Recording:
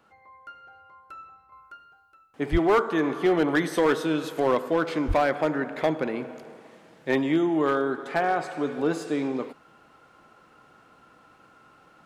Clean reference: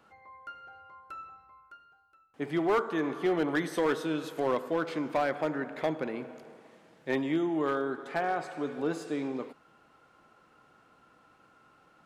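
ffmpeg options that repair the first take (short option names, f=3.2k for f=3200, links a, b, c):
-filter_complex "[0:a]asplit=3[a][b][c];[a]afade=t=out:st=2.51:d=0.02[d];[b]highpass=f=140:w=0.5412,highpass=f=140:w=1.3066,afade=t=in:st=2.51:d=0.02,afade=t=out:st=2.63:d=0.02[e];[c]afade=t=in:st=2.63:d=0.02[f];[d][e][f]amix=inputs=3:normalize=0,asplit=3[g][h][i];[g]afade=t=out:st=5.07:d=0.02[j];[h]highpass=f=140:w=0.5412,highpass=f=140:w=1.3066,afade=t=in:st=5.07:d=0.02,afade=t=out:st=5.19:d=0.02[k];[i]afade=t=in:st=5.19:d=0.02[l];[j][k][l]amix=inputs=3:normalize=0,asetnsamples=n=441:p=0,asendcmd='1.52 volume volume -6dB',volume=0dB"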